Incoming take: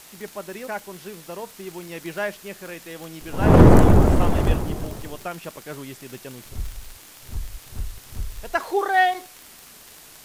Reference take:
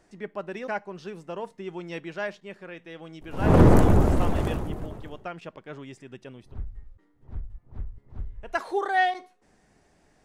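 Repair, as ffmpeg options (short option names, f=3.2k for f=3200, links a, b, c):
-filter_complex "[0:a]adeclick=t=4,asplit=3[a][b][c];[a]afade=t=out:st=4.46:d=0.02[d];[b]highpass=f=140:w=0.5412,highpass=f=140:w=1.3066,afade=t=in:st=4.46:d=0.02,afade=t=out:st=4.58:d=0.02[e];[c]afade=t=in:st=4.58:d=0.02[f];[d][e][f]amix=inputs=3:normalize=0,afwtdn=0.0056,asetnsamples=n=441:p=0,asendcmd='2.05 volume volume -4.5dB',volume=0dB"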